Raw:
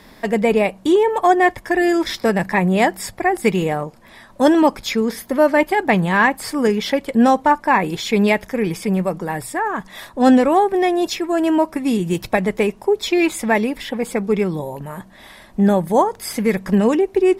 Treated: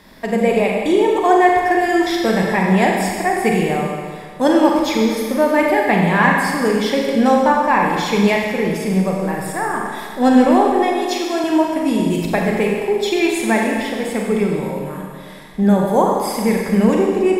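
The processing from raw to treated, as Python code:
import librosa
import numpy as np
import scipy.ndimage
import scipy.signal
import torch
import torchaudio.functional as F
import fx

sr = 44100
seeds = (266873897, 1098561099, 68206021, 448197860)

y = fx.highpass(x, sr, hz=280.0, slope=12, at=(10.82, 11.44))
y = fx.rev_schroeder(y, sr, rt60_s=1.8, comb_ms=32, drr_db=-1.0)
y = F.gain(torch.from_numpy(y), -2.0).numpy()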